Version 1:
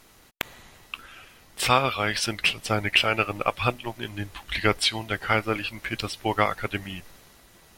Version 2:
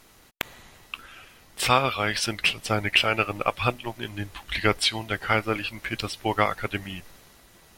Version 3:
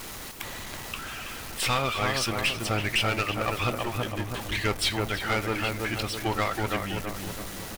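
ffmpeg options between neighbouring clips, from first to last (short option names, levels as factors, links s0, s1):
-af anull
-filter_complex "[0:a]aeval=exprs='val(0)+0.5*0.0266*sgn(val(0))':c=same,asplit=2[s0][s1];[s1]adelay=327,lowpass=f=1300:p=1,volume=0.631,asplit=2[s2][s3];[s3]adelay=327,lowpass=f=1300:p=1,volume=0.52,asplit=2[s4][s5];[s5]adelay=327,lowpass=f=1300:p=1,volume=0.52,asplit=2[s6][s7];[s7]adelay=327,lowpass=f=1300:p=1,volume=0.52,asplit=2[s8][s9];[s9]adelay=327,lowpass=f=1300:p=1,volume=0.52,asplit=2[s10][s11];[s11]adelay=327,lowpass=f=1300:p=1,volume=0.52,asplit=2[s12][s13];[s13]adelay=327,lowpass=f=1300:p=1,volume=0.52[s14];[s0][s2][s4][s6][s8][s10][s12][s14]amix=inputs=8:normalize=0,aeval=exprs='(tanh(7.08*val(0)+0.35)-tanh(0.35))/7.08':c=same,volume=0.841"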